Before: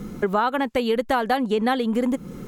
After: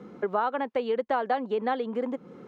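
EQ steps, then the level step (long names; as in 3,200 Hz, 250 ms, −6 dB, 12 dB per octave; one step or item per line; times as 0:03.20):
Chebyshev high-pass filter 190 Hz, order 2
three-way crossover with the lows and the highs turned down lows −20 dB, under 440 Hz, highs −15 dB, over 5,800 Hz
spectral tilt −4 dB per octave
−4.0 dB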